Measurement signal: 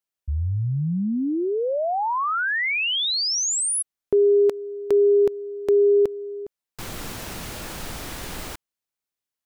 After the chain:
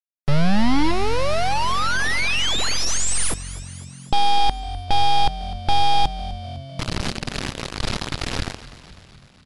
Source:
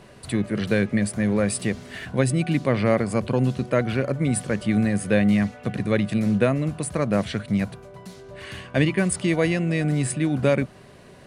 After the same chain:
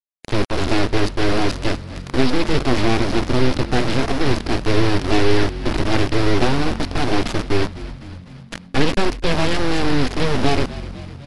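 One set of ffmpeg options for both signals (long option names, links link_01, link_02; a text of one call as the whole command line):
ffmpeg -i in.wav -filter_complex "[0:a]bass=frequency=250:gain=9,treble=frequency=4000:gain=10,aresample=11025,acrusher=bits=3:mix=0:aa=0.000001,aresample=44100,aeval=exprs='abs(val(0))':channel_layout=same,asplit=7[link_01][link_02][link_03][link_04][link_05][link_06][link_07];[link_02]adelay=252,afreqshift=-45,volume=-16dB[link_08];[link_03]adelay=504,afreqshift=-90,volume=-20dB[link_09];[link_04]adelay=756,afreqshift=-135,volume=-24dB[link_10];[link_05]adelay=1008,afreqshift=-180,volume=-28dB[link_11];[link_06]adelay=1260,afreqshift=-225,volume=-32.1dB[link_12];[link_07]adelay=1512,afreqshift=-270,volume=-36.1dB[link_13];[link_01][link_08][link_09][link_10][link_11][link_12][link_13]amix=inputs=7:normalize=0,volume=1.5dB" -ar 24000 -c:a libmp3lame -b:a 96k out.mp3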